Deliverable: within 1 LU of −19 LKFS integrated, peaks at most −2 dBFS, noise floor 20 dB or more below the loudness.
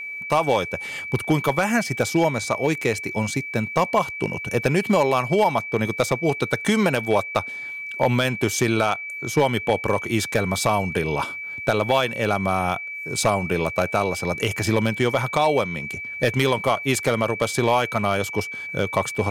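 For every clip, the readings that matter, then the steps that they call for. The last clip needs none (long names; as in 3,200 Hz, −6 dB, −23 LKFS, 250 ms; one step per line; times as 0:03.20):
share of clipped samples 0.8%; peaks flattened at −10.0 dBFS; interfering tone 2,300 Hz; level of the tone −30 dBFS; integrated loudness −22.5 LKFS; sample peak −10.0 dBFS; target loudness −19.0 LKFS
→ clipped peaks rebuilt −10 dBFS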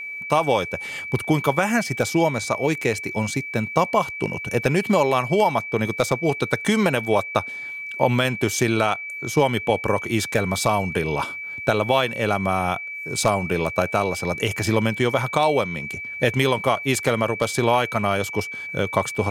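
share of clipped samples 0.0%; interfering tone 2,300 Hz; level of the tone −30 dBFS
→ notch filter 2,300 Hz, Q 30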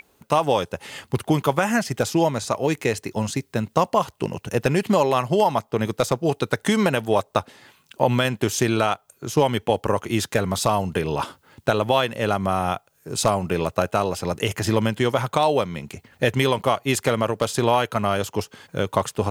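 interfering tone none found; integrated loudness −23.0 LKFS; sample peak −2.5 dBFS; target loudness −19.0 LKFS
→ level +4 dB
brickwall limiter −2 dBFS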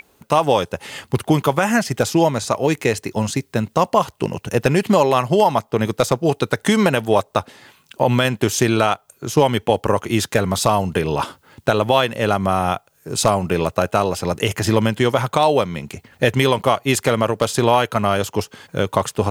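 integrated loudness −19.0 LKFS; sample peak −2.0 dBFS; background noise floor −58 dBFS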